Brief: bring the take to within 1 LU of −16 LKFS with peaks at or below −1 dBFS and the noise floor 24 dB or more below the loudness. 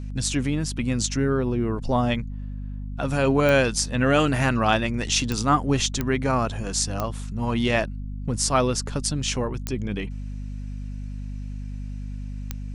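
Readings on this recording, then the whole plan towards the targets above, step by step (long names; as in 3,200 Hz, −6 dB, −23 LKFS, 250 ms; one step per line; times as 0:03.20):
number of clicks 6; mains hum 50 Hz; hum harmonics up to 250 Hz; level of the hum −30 dBFS; integrated loudness −24.0 LKFS; sample peak −6.0 dBFS; target loudness −16.0 LKFS
→ click removal
mains-hum notches 50/100/150/200/250 Hz
level +8 dB
brickwall limiter −1 dBFS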